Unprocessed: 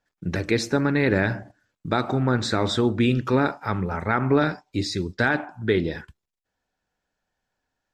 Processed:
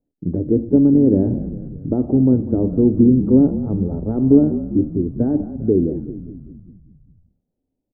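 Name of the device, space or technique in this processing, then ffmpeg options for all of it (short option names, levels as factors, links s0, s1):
under water: -filter_complex "[0:a]lowpass=f=520:w=0.5412,lowpass=f=520:w=1.3066,equalizer=f=270:t=o:w=0.51:g=9,asplit=8[s0][s1][s2][s3][s4][s5][s6][s7];[s1]adelay=199,afreqshift=-37,volume=0.251[s8];[s2]adelay=398,afreqshift=-74,volume=0.153[s9];[s3]adelay=597,afreqshift=-111,volume=0.0933[s10];[s4]adelay=796,afreqshift=-148,volume=0.0569[s11];[s5]adelay=995,afreqshift=-185,volume=0.0347[s12];[s6]adelay=1194,afreqshift=-222,volume=0.0211[s13];[s7]adelay=1393,afreqshift=-259,volume=0.0129[s14];[s0][s8][s9][s10][s11][s12][s13][s14]amix=inputs=8:normalize=0,volume=1.5"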